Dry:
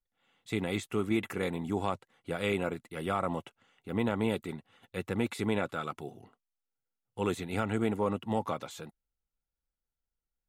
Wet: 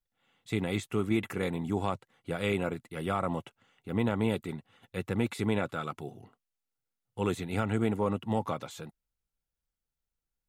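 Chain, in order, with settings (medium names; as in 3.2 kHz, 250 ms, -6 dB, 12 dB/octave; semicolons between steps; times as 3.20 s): peaking EQ 120 Hz +4.5 dB 1.3 oct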